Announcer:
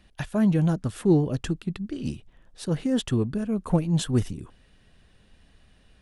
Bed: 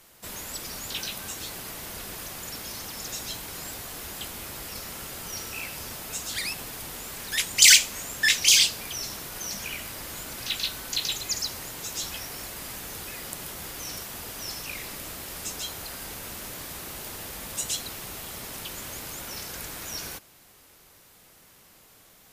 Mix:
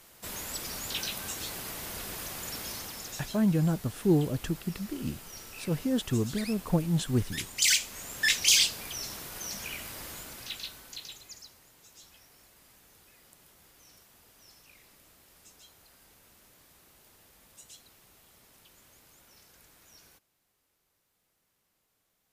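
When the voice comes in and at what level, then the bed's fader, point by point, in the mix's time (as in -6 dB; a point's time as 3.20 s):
3.00 s, -4.0 dB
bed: 2.69 s -1 dB
3.44 s -10 dB
7.71 s -10 dB
8.21 s -4 dB
10.06 s -4 dB
11.60 s -21.5 dB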